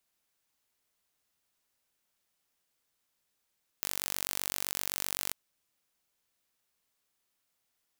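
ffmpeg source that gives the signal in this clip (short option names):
-f lavfi -i "aevalsrc='0.501*eq(mod(n,923),0)':d=1.5:s=44100"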